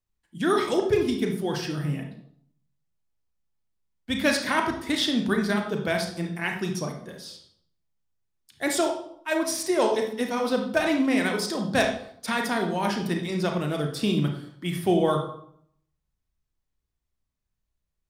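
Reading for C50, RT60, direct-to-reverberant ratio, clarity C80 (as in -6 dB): 6.0 dB, 0.65 s, 2.5 dB, 10.0 dB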